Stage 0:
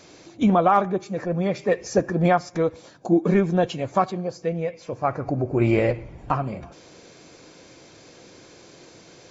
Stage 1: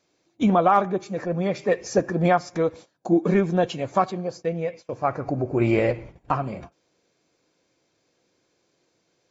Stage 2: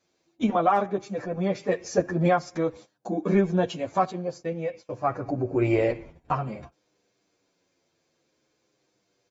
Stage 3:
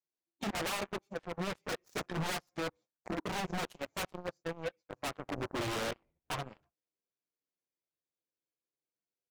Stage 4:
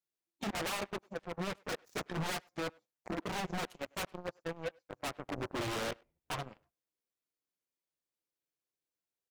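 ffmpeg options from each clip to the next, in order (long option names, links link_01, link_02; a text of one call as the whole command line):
ffmpeg -i in.wav -af "agate=range=-21dB:threshold=-38dB:ratio=16:detection=peak,lowshelf=frequency=130:gain=-4.5" out.wav
ffmpeg -i in.wav -filter_complex "[0:a]asplit=2[link_01][link_02];[link_02]adelay=8.7,afreqshift=-0.51[link_03];[link_01][link_03]amix=inputs=2:normalize=1" out.wav
ffmpeg -i in.wav -af "aeval=exprs='0.075*(abs(mod(val(0)/0.075+3,4)-2)-1)':channel_layout=same,aeval=exprs='0.0794*(cos(1*acos(clip(val(0)/0.0794,-1,1)))-cos(1*PI/2))+0.0282*(cos(3*acos(clip(val(0)/0.0794,-1,1)))-cos(3*PI/2))':channel_layout=same,volume=-5.5dB" out.wav
ffmpeg -i in.wav -filter_complex "[0:a]asplit=2[link_01][link_02];[link_02]adelay=100,highpass=300,lowpass=3400,asoftclip=type=hard:threshold=-35dB,volume=-25dB[link_03];[link_01][link_03]amix=inputs=2:normalize=0,volume=-1dB" out.wav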